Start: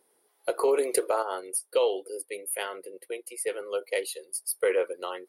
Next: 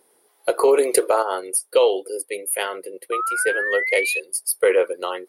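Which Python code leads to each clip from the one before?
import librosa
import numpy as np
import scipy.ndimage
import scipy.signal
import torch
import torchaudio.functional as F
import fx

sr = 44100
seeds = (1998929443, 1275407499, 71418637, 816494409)

y = fx.spec_paint(x, sr, seeds[0], shape='rise', start_s=3.12, length_s=1.08, low_hz=1200.0, high_hz=2600.0, level_db=-32.0)
y = F.gain(torch.from_numpy(y), 8.0).numpy()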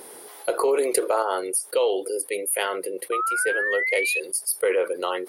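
y = fx.env_flatten(x, sr, amount_pct=50)
y = F.gain(torch.from_numpy(y), -6.5).numpy()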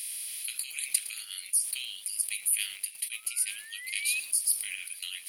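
y = fx.bin_compress(x, sr, power=0.6)
y = scipy.signal.sosfilt(scipy.signal.butter(6, 2700.0, 'highpass', fs=sr, output='sos'), y)
y = fx.echo_crushed(y, sr, ms=112, feedback_pct=35, bits=6, wet_db=-14.5)
y = F.gain(torch.from_numpy(y), -3.0).numpy()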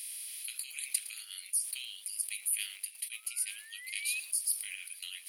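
y = fx.highpass(x, sr, hz=450.0, slope=6)
y = F.gain(torch.from_numpy(y), -5.0).numpy()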